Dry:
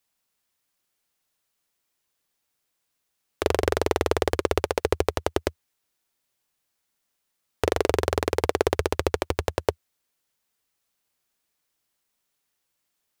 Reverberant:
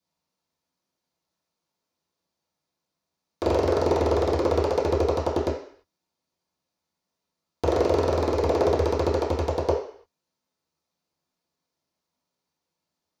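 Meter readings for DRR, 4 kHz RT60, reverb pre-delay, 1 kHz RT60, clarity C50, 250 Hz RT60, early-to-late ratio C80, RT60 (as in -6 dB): -11.0 dB, 0.60 s, 3 ms, 0.55 s, 5.5 dB, 0.50 s, 9.0 dB, 0.55 s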